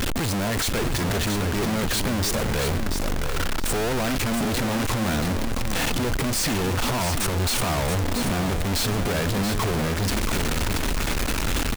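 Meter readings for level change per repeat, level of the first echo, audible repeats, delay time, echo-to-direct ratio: -13.5 dB, -7.0 dB, 2, 680 ms, -7.0 dB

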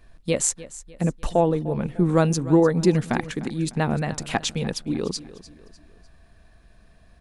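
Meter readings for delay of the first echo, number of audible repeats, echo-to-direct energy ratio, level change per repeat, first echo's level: 300 ms, 3, -16.0 dB, -7.5 dB, -17.0 dB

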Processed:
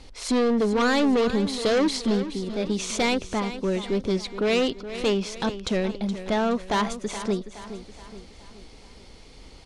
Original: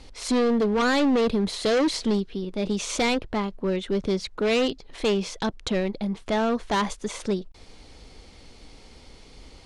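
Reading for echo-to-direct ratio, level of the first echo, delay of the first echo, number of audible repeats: -11.5 dB, -12.5 dB, 421 ms, 4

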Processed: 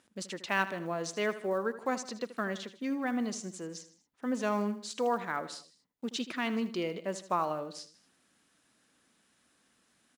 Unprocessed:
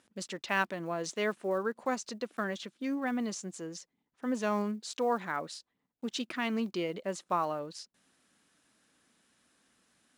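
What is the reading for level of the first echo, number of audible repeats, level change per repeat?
-14.0 dB, 3, -6.0 dB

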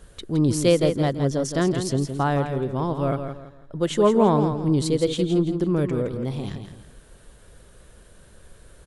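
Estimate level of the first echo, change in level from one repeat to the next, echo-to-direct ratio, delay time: -8.0 dB, -10.0 dB, -7.5 dB, 166 ms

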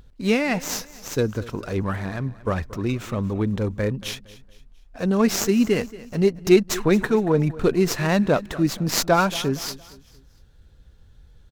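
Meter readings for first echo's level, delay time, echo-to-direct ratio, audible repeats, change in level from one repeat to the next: -18.5 dB, 230 ms, -18.0 dB, 3, -8.0 dB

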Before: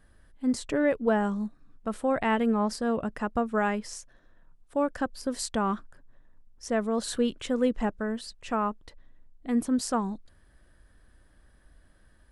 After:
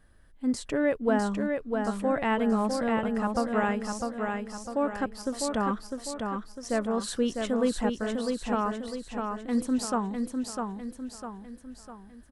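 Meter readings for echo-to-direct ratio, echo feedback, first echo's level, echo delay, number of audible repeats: -3.5 dB, 47%, -4.5 dB, 652 ms, 5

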